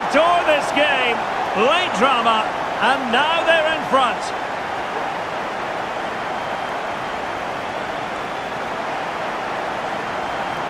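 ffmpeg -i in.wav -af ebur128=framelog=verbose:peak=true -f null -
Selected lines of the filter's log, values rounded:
Integrated loudness:
  I:         -20.0 LUFS
  Threshold: -30.0 LUFS
Loudness range:
  LRA:         7.7 LU
  Threshold: -40.4 LUFS
  LRA low:   -24.8 LUFS
  LRA high:  -17.1 LUFS
True peak:
  Peak:       -2.5 dBFS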